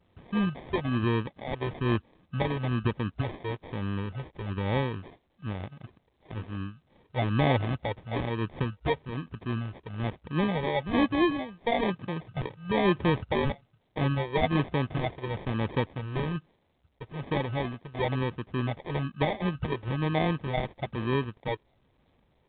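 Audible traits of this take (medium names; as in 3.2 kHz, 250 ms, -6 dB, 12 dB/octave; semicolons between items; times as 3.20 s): phasing stages 8, 1.1 Hz, lowest notch 210–2200 Hz; aliases and images of a low sample rate 1.4 kHz, jitter 0%; A-law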